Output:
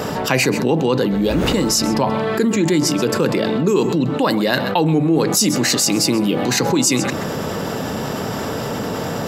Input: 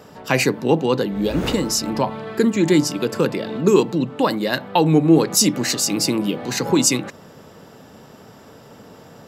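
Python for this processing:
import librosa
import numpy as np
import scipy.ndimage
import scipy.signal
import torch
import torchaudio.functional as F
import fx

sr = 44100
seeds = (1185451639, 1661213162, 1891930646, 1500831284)

p1 = x + fx.echo_single(x, sr, ms=131, db=-18.5, dry=0)
p2 = fx.env_flatten(p1, sr, amount_pct=70)
y = p2 * librosa.db_to_amplitude(-4.5)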